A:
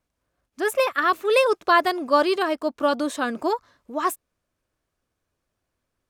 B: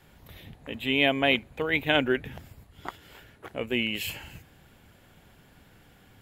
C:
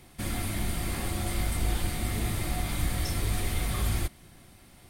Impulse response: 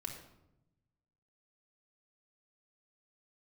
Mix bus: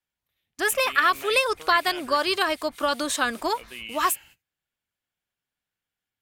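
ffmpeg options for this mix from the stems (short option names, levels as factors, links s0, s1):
-filter_complex "[0:a]acompressor=threshold=0.1:ratio=6,volume=1.26,asplit=2[s0][s1];[1:a]alimiter=limit=0.141:level=0:latency=1,volume=0.251[s2];[2:a]acrossover=split=1800[s3][s4];[s3]aeval=exprs='val(0)*(1-1/2+1/2*cos(2*PI*5.2*n/s))':c=same[s5];[s4]aeval=exprs='val(0)*(1-1/2-1/2*cos(2*PI*5.2*n/s))':c=same[s6];[s5][s6]amix=inputs=2:normalize=0,volume=0.158[s7];[s1]apad=whole_len=215712[s8];[s7][s8]sidechaingate=range=0.0224:threshold=0.00141:ratio=16:detection=peak[s9];[s0][s2][s9]amix=inputs=3:normalize=0,tiltshelf=f=970:g=-7.5,agate=range=0.0891:threshold=0.00447:ratio=16:detection=peak"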